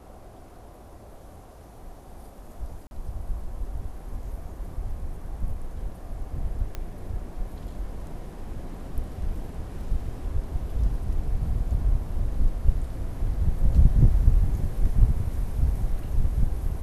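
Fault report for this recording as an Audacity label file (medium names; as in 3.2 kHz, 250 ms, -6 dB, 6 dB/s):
2.870000	2.910000	dropout 41 ms
6.750000	6.750000	pop -19 dBFS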